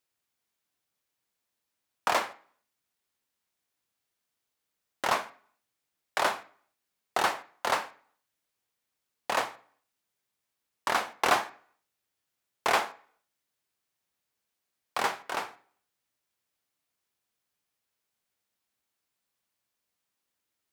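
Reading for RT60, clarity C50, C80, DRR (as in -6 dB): 0.50 s, 16.5 dB, 20.5 dB, 10.5 dB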